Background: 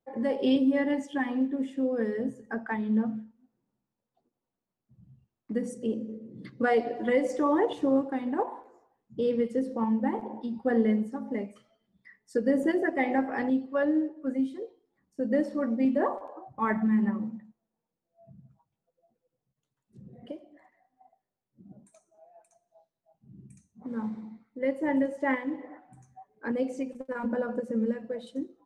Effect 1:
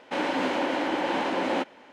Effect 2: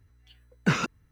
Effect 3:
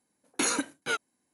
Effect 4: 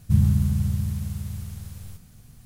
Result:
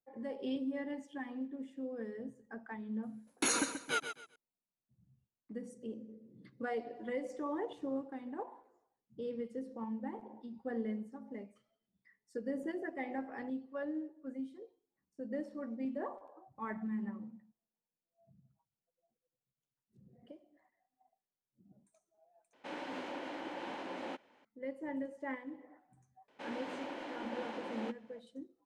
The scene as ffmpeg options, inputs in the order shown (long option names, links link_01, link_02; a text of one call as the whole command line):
ffmpeg -i bed.wav -i cue0.wav -i cue1.wav -i cue2.wav -filter_complex "[1:a]asplit=2[link_01][link_02];[0:a]volume=-13.5dB[link_03];[3:a]aecho=1:1:132|264|396:0.355|0.0923|0.024[link_04];[link_03]asplit=2[link_05][link_06];[link_05]atrim=end=22.534[link_07];[link_01]atrim=end=1.92,asetpts=PTS-STARTPTS,volume=-16dB[link_08];[link_06]atrim=start=24.446[link_09];[link_04]atrim=end=1.33,asetpts=PTS-STARTPTS,volume=-4.5dB,afade=type=in:duration=0.004:curve=hsin,afade=type=out:start_time=1.326:duration=0.004:curve=hsin,adelay=3030[link_10];[link_02]atrim=end=1.92,asetpts=PTS-STARTPTS,volume=-17dB,afade=type=in:duration=0.004:curve=hsin,afade=type=out:start_time=1.916:duration=0.004:curve=hsin,adelay=26280[link_11];[link_07][link_08]acrossfade=duration=0.004:curve1=hsin:curve2=hsin[link_12];[link_12][link_09]acrossfade=duration=0.004:curve1=hsin:curve2=hsin[link_13];[link_13][link_10][link_11]amix=inputs=3:normalize=0" out.wav